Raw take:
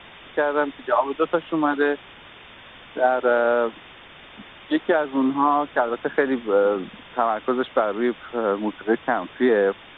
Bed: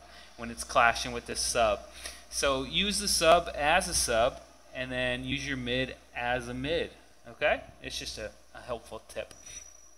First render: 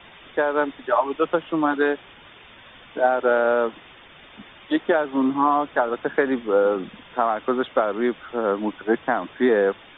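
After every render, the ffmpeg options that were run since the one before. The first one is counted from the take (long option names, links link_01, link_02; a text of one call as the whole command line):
ffmpeg -i in.wav -af "afftdn=noise_reduction=6:noise_floor=-45" out.wav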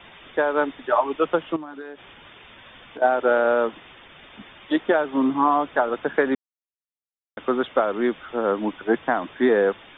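ffmpeg -i in.wav -filter_complex "[0:a]asettb=1/sr,asplit=3[link_01][link_02][link_03];[link_01]atrim=end=1.564[link_04];[link_02]atrim=start=1.56:end=3.02,asetpts=PTS-STARTPTS,afade=type=in:duration=0.004:curve=qsin,afade=type=out:start_time=1.456:duration=0.004:curve=qsin,acompressor=threshold=-32dB:ratio=16:attack=3.2:release=140:knee=1:detection=peak[link_05];[link_03]atrim=start=3.016[link_06];[link_04][link_05]acrossfade=duration=0.004:curve1=hsin:curve2=qsin[link_07];[link_07][link_06]acrossfade=duration=0.004:curve1=qsin:curve2=hsin,asplit=3[link_08][link_09][link_10];[link_08]atrim=end=6.35,asetpts=PTS-STARTPTS,afade=type=out:start_time=6.346:duration=0.004:curve=hsin[link_11];[link_09]atrim=start=6.35:end=7.37,asetpts=PTS-STARTPTS,volume=0[link_12];[link_10]atrim=start=7.37,asetpts=PTS-STARTPTS,afade=type=in:duration=0.004:curve=hsin[link_13];[link_11][link_12][link_13]concat=n=3:v=0:a=1" out.wav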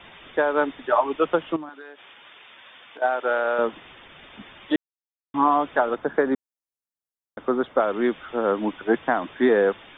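ffmpeg -i in.wav -filter_complex "[0:a]asettb=1/sr,asplit=3[link_01][link_02][link_03];[link_01]atrim=end=1.694[link_04];[link_02]atrim=start=1.69:end=3.59,asetpts=PTS-STARTPTS,afade=type=in:duration=0.004:curve=qsin,afade=type=out:start_time=1.896:duration=0.004:curve=qsin,highpass=frequency=810:poles=1[link_05];[link_03]atrim=start=3.586[link_06];[link_04][link_05]acrossfade=duration=0.004:curve1=hsin:curve2=qsin[link_07];[link_07][link_06]acrossfade=duration=0.004:curve1=qsin:curve2=hsin,asettb=1/sr,asplit=3[link_08][link_09][link_10];[link_08]atrim=end=5.954[link_11];[link_09]atrim=start=5.95:end=7.8,asetpts=PTS-STARTPTS,afade=type=in:duration=0.004:curve=qsin,afade=type=out:start_time=1.846:duration=0.004:curve=qsin,equalizer=frequency=2800:width_type=o:width=1.2:gain=-10[link_12];[link_10]atrim=start=7.796[link_13];[link_11][link_12]acrossfade=duration=0.004:curve1=hsin:curve2=qsin[link_14];[link_14][link_13]acrossfade=duration=0.004:curve1=qsin:curve2=hsin,asplit=3[link_15][link_16][link_17];[link_15]atrim=end=4.76,asetpts=PTS-STARTPTS,afade=type=out:start_time=4.756:duration=0.004:curve=hsin[link_18];[link_16]atrim=start=4.76:end=5.34,asetpts=PTS-STARTPTS,volume=0[link_19];[link_17]atrim=start=5.34,asetpts=PTS-STARTPTS,afade=type=in:duration=0.004:curve=hsin[link_20];[link_18][link_19][link_20]concat=n=3:v=0:a=1" out.wav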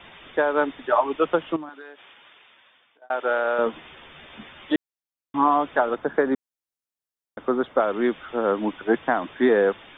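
ffmpeg -i in.wav -filter_complex "[0:a]asettb=1/sr,asplit=3[link_01][link_02][link_03];[link_01]atrim=end=3.654[link_04];[link_02]atrim=start=3.65:end=4.72,asetpts=PTS-STARTPTS,afade=type=in:duration=0.004:curve=qsin,afade=type=out:start_time=1.066:duration=0.004:curve=qsin,asplit=2[link_05][link_06];[link_06]adelay=13,volume=-5dB[link_07];[link_05][link_07]amix=inputs=2:normalize=0,atrim=end_sample=47187[link_08];[link_03]atrim=start=4.716[link_09];[link_04][link_08]acrossfade=duration=0.004:curve1=hsin:curve2=qsin[link_10];[link_10][link_09]acrossfade=duration=0.004:curve1=qsin:curve2=hsin,asplit=2[link_11][link_12];[link_11]atrim=end=3.1,asetpts=PTS-STARTPTS,afade=type=out:start_time=1.86:duration=1.24[link_13];[link_12]atrim=start=3.1,asetpts=PTS-STARTPTS,afade=type=in:duration=0.004:curve=hsin[link_14];[link_13][link_14]concat=n=2:v=0:a=1" out.wav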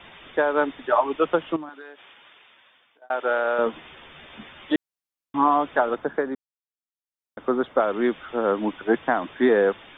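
ffmpeg -i in.wav -filter_complex "[0:a]asplit=3[link_01][link_02][link_03];[link_01]atrim=end=6.48,asetpts=PTS-STARTPTS,afade=type=out:start_time=5.99:duration=0.49:silence=0.16788[link_04];[link_02]atrim=start=6.48:end=6.98,asetpts=PTS-STARTPTS,volume=-15.5dB[link_05];[link_03]atrim=start=6.98,asetpts=PTS-STARTPTS,afade=type=in:duration=0.49:silence=0.16788[link_06];[link_04][link_05][link_06]concat=n=3:v=0:a=1" out.wav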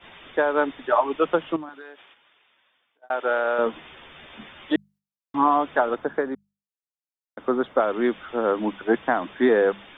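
ffmpeg -i in.wav -af "agate=range=-9dB:threshold=-49dB:ratio=16:detection=peak,bandreject=frequency=50:width_type=h:width=6,bandreject=frequency=100:width_type=h:width=6,bandreject=frequency=150:width_type=h:width=6,bandreject=frequency=200:width_type=h:width=6" out.wav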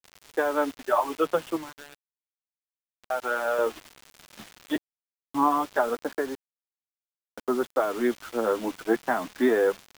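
ffmpeg -i in.wav -af "flanger=delay=0.6:depth=8.4:regen=-26:speed=0.3:shape=triangular,acrusher=bits=6:mix=0:aa=0.000001" out.wav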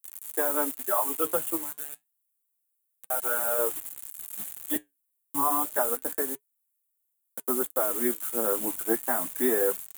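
ffmpeg -i in.wav -af "flanger=delay=0.8:depth=9.4:regen=-72:speed=0.29:shape=triangular,aexciter=amount=13:drive=5.6:freq=7600" out.wav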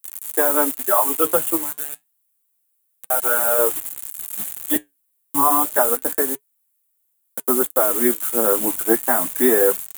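ffmpeg -i in.wav -af "volume=9dB" out.wav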